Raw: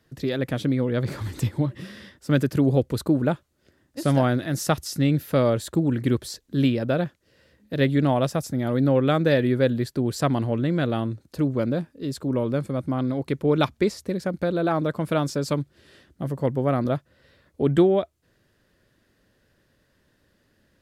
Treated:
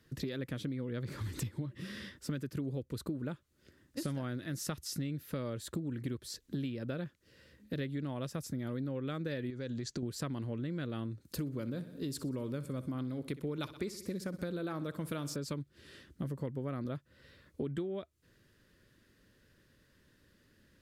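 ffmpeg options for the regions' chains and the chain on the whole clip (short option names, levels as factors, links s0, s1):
-filter_complex "[0:a]asettb=1/sr,asplit=3[s0][s1][s2];[s0]atrim=end=9.504[s3];[s1]atrim=start=9.5:end=10.03,asetpts=PTS-STARTPTS,afade=t=in:d=0.004:c=qsin,afade=t=out:st=0.526:d=0.004:c=qsin,lowpass=f=6500:t=q:w=4.4,acompressor=threshold=0.0398:ratio=3:attack=3.2:release=140:knee=1:detection=peak[s4];[s2]atrim=start=10.026[s5];[s3][s4]acrossfade=d=0.004:c1=hsin:c2=qsin[s6];[s6][s5]acrossfade=d=0.004:c1=qsin:c2=hsin,asettb=1/sr,asplit=3[s7][s8][s9];[s7]atrim=end=11.254[s10];[s8]atrim=start=11.25:end=15.36,asetpts=PTS-STARTPTS,afade=t=in:d=0.004:c=qsin,afade=t=out:st=4.106:d=0.004:c=qsin,highshelf=f=7300:g=10.5,aecho=1:1:62|124|186|248|310:0.15|0.0853|0.0486|0.0277|0.0158,atrim=end_sample=181251[s11];[s9]atrim=start=15.356[s12];[s10][s11]acrossfade=d=0.004:c1=hsin:c2=qsin[s13];[s13][s12]acrossfade=d=0.004:c1=qsin:c2=hsin,equalizer=f=730:w=2:g=-9.5,acompressor=threshold=0.02:ratio=8,volume=0.891"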